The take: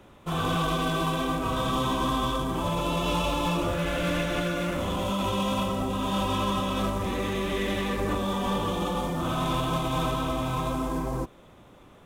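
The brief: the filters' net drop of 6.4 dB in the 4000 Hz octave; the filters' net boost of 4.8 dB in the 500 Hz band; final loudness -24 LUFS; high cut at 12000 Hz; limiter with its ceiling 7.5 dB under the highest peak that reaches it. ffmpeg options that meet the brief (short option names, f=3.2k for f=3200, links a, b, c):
-af "lowpass=12k,equalizer=f=500:t=o:g=6,equalizer=f=4k:t=o:g=-8.5,volume=6dB,alimiter=limit=-15.5dB:level=0:latency=1"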